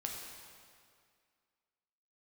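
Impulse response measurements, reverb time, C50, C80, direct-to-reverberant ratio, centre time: 2.1 s, 2.0 dB, 3.5 dB, -0.5 dB, 82 ms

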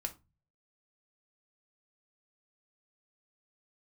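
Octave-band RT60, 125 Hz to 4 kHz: 0.70 s, 0.45 s, 0.25 s, 0.25 s, 0.20 s, 0.20 s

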